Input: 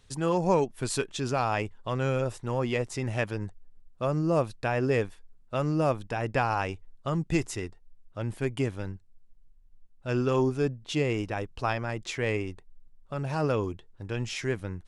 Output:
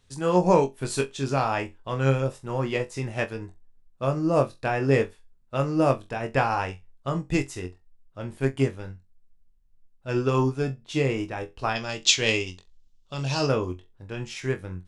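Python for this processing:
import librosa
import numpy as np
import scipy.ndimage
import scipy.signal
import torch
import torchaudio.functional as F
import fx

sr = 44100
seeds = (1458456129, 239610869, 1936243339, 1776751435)

p1 = fx.band_shelf(x, sr, hz=4500.0, db=15.0, octaves=1.7, at=(11.75, 13.47))
p2 = p1 + fx.room_flutter(p1, sr, wall_m=3.8, rt60_s=0.21, dry=0)
p3 = fx.upward_expand(p2, sr, threshold_db=-37.0, expansion=1.5)
y = p3 * 10.0 ** (4.5 / 20.0)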